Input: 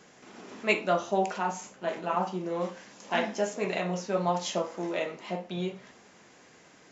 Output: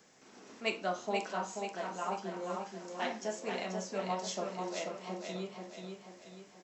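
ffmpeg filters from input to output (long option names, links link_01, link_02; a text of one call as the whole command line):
ffmpeg -i in.wav -filter_complex "[0:a]acrossover=split=310|1300[link_01][link_02][link_03];[link_03]aexciter=amount=1.8:drive=5.4:freq=4300[link_04];[link_01][link_02][link_04]amix=inputs=3:normalize=0,aecho=1:1:505|1010|1515|2020|2525|3030:0.562|0.253|0.114|0.0512|0.0231|0.0104,asetrate=45938,aresample=44100,volume=-8.5dB" out.wav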